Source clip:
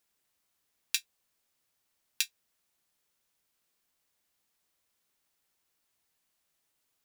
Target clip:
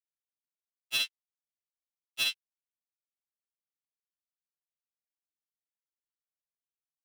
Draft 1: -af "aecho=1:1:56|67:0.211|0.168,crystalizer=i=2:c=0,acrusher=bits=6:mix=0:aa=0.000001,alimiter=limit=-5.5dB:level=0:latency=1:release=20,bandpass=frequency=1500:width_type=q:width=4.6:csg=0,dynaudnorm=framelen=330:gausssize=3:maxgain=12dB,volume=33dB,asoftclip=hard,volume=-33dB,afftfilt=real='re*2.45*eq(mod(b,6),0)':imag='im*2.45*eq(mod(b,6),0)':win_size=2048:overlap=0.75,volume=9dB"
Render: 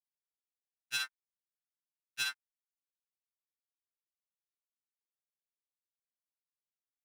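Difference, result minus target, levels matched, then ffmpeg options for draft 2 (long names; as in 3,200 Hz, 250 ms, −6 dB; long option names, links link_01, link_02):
2,000 Hz band +3.5 dB
-af "aecho=1:1:56|67:0.211|0.168,crystalizer=i=2:c=0,acrusher=bits=6:mix=0:aa=0.000001,alimiter=limit=-5.5dB:level=0:latency=1:release=20,bandpass=frequency=3000:width_type=q:width=4.6:csg=0,dynaudnorm=framelen=330:gausssize=3:maxgain=12dB,volume=33dB,asoftclip=hard,volume=-33dB,afftfilt=real='re*2.45*eq(mod(b,6),0)':imag='im*2.45*eq(mod(b,6),0)':win_size=2048:overlap=0.75,volume=9dB"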